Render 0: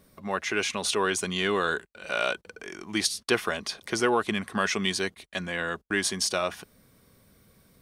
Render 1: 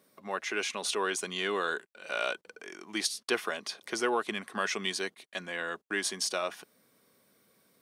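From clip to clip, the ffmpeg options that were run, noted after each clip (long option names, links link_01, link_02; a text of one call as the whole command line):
ffmpeg -i in.wav -af "highpass=270,volume=-4.5dB" out.wav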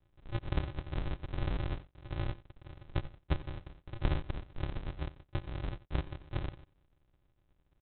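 ffmpeg -i in.wav -af "aresample=8000,acrusher=samples=35:mix=1:aa=0.000001,aresample=44100,aecho=1:1:89:0.119,volume=-1.5dB" out.wav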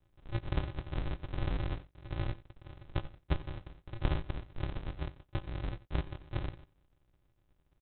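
ffmpeg -i in.wav -filter_complex "[0:a]asplit=2[link_01][link_02];[link_02]adelay=18,volume=-14dB[link_03];[link_01][link_03]amix=inputs=2:normalize=0" out.wav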